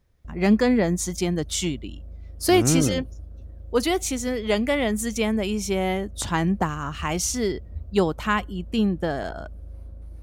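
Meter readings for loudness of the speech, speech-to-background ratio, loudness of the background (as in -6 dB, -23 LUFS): -24.0 LUFS, 18.0 dB, -42.0 LUFS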